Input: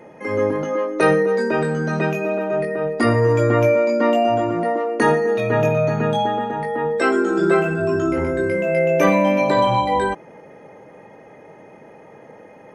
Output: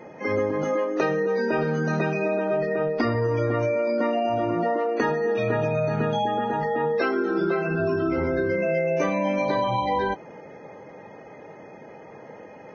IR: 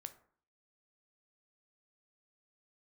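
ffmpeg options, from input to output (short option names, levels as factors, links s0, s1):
-af "acompressor=threshold=0.1:ratio=12" -ar 16000 -c:a libvorbis -b:a 16k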